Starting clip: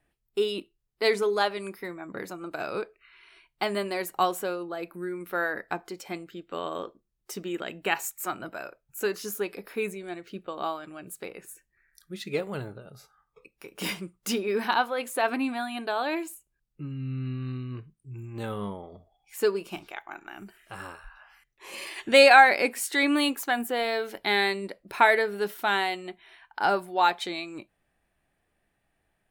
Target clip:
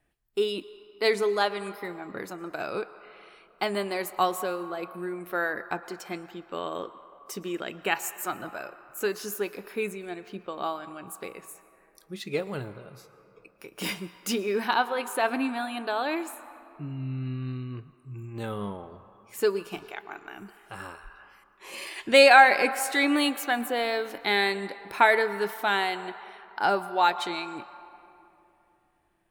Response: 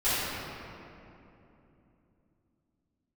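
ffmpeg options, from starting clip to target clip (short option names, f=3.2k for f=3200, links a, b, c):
-filter_complex "[0:a]asplit=2[a][b];[b]equalizer=f=1.1k:t=o:w=0.82:g=9[c];[1:a]atrim=start_sample=2205,lowshelf=f=230:g=-12,adelay=106[d];[c][d]afir=irnorm=-1:irlink=0,volume=-30.5dB[e];[a][e]amix=inputs=2:normalize=0"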